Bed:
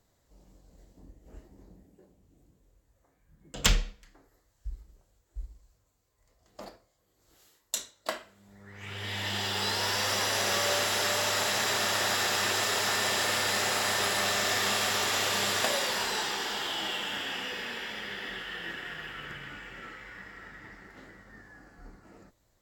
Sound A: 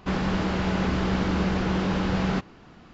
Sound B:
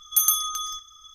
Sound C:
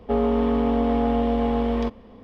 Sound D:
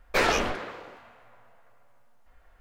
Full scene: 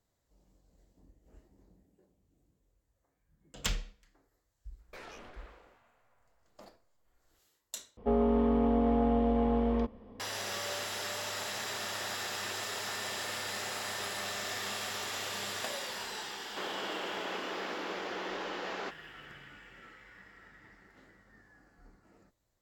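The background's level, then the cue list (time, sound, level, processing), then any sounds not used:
bed −9.5 dB
0:04.79: mix in D −15.5 dB + downward compressor 2.5 to 1, threshold −34 dBFS
0:07.97: overwrite with C −5.5 dB + high-shelf EQ 2,300 Hz −10 dB
0:16.50: mix in A −8 dB + high-pass filter 350 Hz 24 dB per octave
not used: B

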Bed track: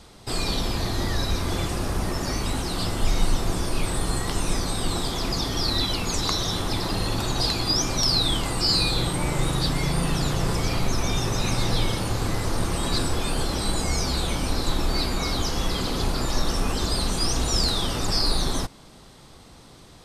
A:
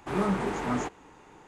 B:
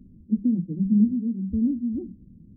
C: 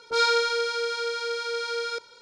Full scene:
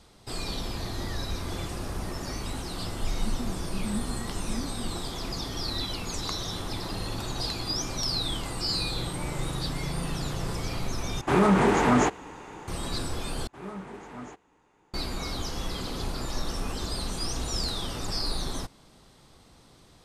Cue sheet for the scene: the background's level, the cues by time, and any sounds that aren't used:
bed track −7.5 dB
0:02.94: mix in B −14 dB
0:11.21: overwrite with A −10.5 dB + boost into a limiter +20.5 dB
0:13.47: overwrite with A −12 dB
not used: C

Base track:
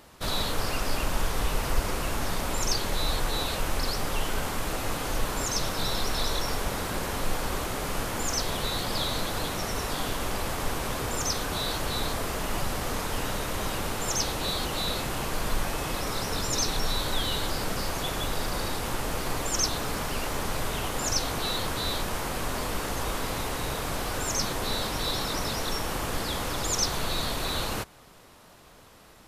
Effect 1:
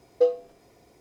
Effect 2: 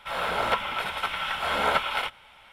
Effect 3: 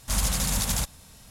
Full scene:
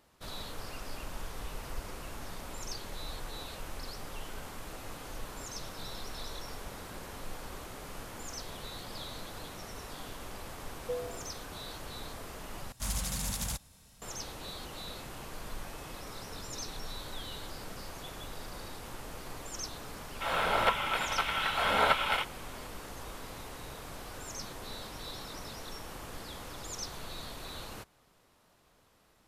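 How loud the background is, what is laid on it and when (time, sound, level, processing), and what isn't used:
base track −13.5 dB
0:10.68: mix in 1 −17 dB + level that may fall only so fast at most 60 dB per second
0:12.72: overwrite with 3 −9 dB
0:20.15: mix in 2 −2 dB

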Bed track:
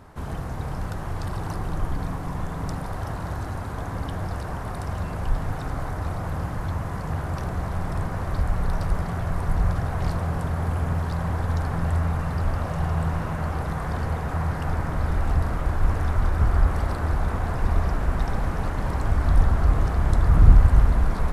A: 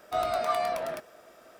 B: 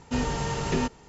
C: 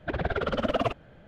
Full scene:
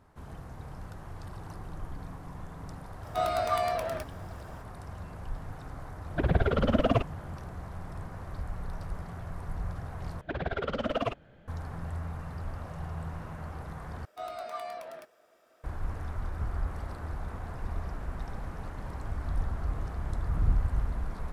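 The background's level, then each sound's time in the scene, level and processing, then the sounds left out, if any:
bed track −13 dB
0:03.03: mix in A −0.5 dB
0:06.10: mix in C −2.5 dB + low-shelf EQ 330 Hz +10.5 dB
0:10.21: overwrite with C −4 dB
0:14.05: overwrite with A −10.5 dB + bass and treble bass −5 dB, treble −1 dB
not used: B

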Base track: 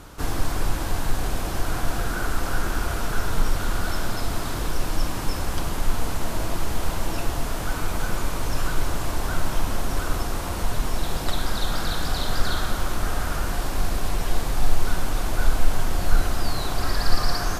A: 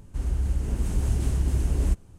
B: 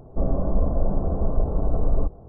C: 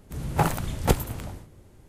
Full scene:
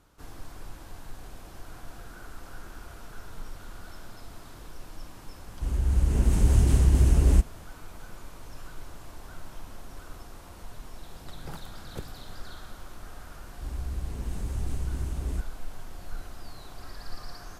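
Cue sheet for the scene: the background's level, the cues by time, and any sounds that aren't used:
base track −18.5 dB
0:05.47: mix in A −1.5 dB + automatic gain control gain up to 6 dB
0:11.08: mix in C −16.5 dB + rotating-speaker cabinet horn 8 Hz
0:13.47: mix in A −8 dB
not used: B

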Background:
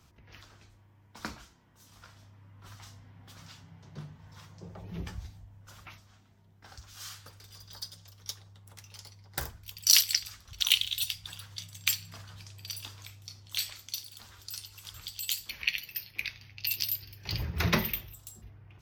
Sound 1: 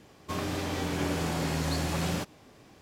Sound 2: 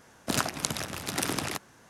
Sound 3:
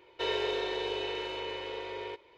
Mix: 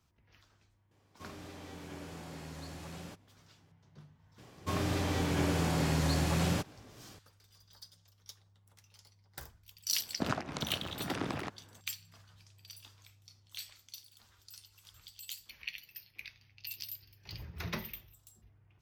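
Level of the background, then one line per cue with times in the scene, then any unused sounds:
background −12 dB
0:00.91: mix in 1 −16 dB
0:04.38: mix in 1 −1.5 dB + parametric band 110 Hz +6.5 dB
0:09.92: mix in 2 −2.5 dB + head-to-tape spacing loss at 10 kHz 25 dB
not used: 3

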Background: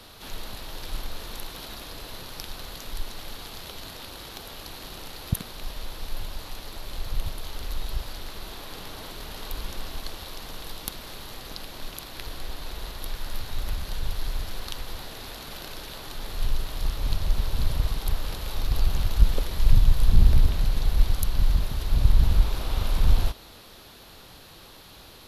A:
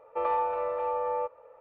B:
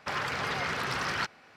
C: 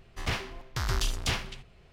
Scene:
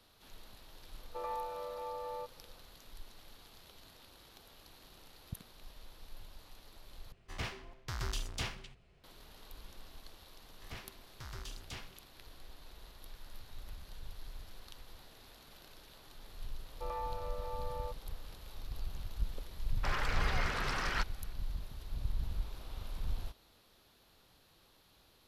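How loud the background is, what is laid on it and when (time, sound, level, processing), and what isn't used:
background −18 dB
0:00.99: mix in A −12 dB
0:07.12: overwrite with C −9 dB
0:10.44: mix in C −17 dB
0:16.65: mix in A −13 dB
0:19.77: mix in B −5 dB

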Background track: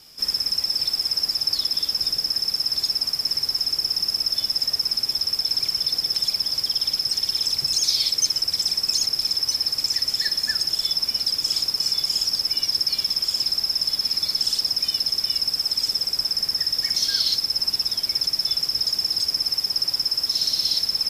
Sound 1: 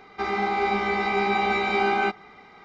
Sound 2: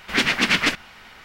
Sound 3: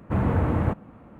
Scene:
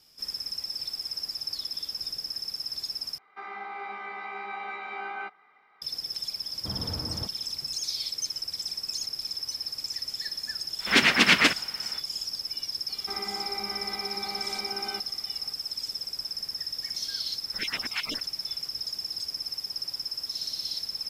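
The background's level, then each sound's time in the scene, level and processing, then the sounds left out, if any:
background track −11 dB
0:03.18: overwrite with 1 −9 dB + resonant band-pass 1,400 Hz, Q 1.1
0:06.54: mix in 3 −14 dB
0:10.78: mix in 2, fades 0.05 s + high-pass filter 130 Hz 6 dB per octave
0:12.89: mix in 1 −8 dB + brickwall limiter −22 dBFS
0:17.45: mix in 2 −13 dB + time-frequency cells dropped at random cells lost 36%

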